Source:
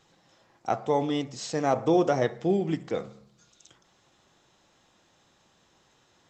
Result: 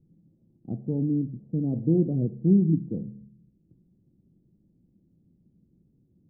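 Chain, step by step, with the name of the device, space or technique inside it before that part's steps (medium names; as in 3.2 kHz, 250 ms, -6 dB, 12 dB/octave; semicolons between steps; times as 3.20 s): the neighbour's flat through the wall (low-pass 280 Hz 24 dB/octave; peaking EQ 180 Hz +5 dB 0.51 oct); trim +6.5 dB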